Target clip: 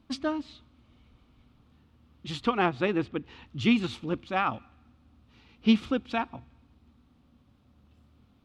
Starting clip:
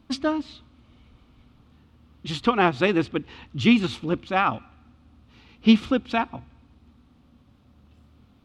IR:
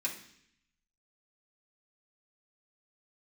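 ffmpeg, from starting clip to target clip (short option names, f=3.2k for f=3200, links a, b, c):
-filter_complex "[0:a]asettb=1/sr,asplit=3[a][b][c];[a]atrim=end=2.664[d];[b]atrim=start=2.66:end=3.26,asetpts=PTS-STARTPTS,afade=t=in:d=0.004:c=qsin,afade=t=out:st=0.596:d=0.004:c=qsin,highshelf=f=4.2k:g=-9.5[e];[c]atrim=start=3.256[f];[d][e]acrossfade=d=0.004:c1=hsin:c2=qsin[g];[g][f]acrossfade=d=0.004:c1=qsin:c2=hsin,volume=-5.5dB"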